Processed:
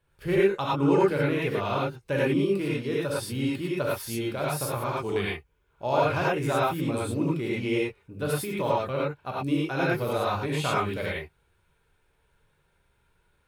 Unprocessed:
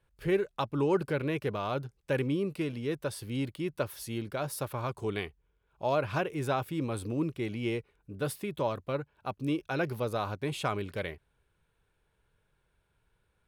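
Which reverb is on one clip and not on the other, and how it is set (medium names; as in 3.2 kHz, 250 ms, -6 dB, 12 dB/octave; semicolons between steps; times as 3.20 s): gated-style reverb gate 130 ms rising, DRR -6 dB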